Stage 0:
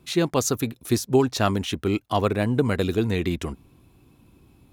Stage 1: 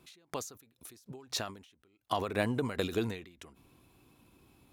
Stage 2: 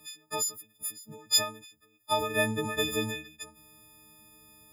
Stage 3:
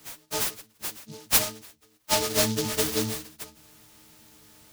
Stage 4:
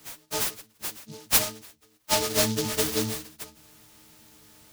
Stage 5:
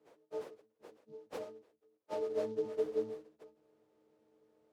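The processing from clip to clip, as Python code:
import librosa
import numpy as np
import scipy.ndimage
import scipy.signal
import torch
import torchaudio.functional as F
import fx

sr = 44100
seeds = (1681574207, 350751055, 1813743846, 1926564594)

y1 = fx.low_shelf(x, sr, hz=320.0, db=-10.0)
y1 = fx.end_taper(y1, sr, db_per_s=100.0)
y1 = y1 * 10.0 ** (-1.5 / 20.0)
y2 = fx.freq_snap(y1, sr, grid_st=6)
y3 = fx.noise_mod_delay(y2, sr, seeds[0], noise_hz=4700.0, depth_ms=0.18)
y3 = y3 * 10.0 ** (3.5 / 20.0)
y4 = y3
y5 = fx.bandpass_q(y4, sr, hz=460.0, q=3.8)
y5 = y5 * 10.0 ** (-2.0 / 20.0)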